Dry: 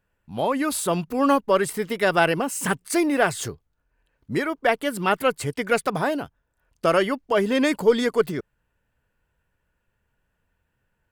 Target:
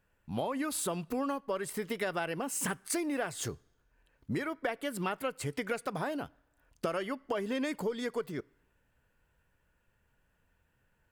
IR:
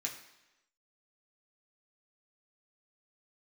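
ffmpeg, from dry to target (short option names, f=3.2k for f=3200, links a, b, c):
-filter_complex "[0:a]acompressor=threshold=-31dB:ratio=10,asplit=2[a][b];[1:a]atrim=start_sample=2205,asetrate=41013,aresample=44100[c];[b][c]afir=irnorm=-1:irlink=0,volume=-20dB[d];[a][d]amix=inputs=2:normalize=0"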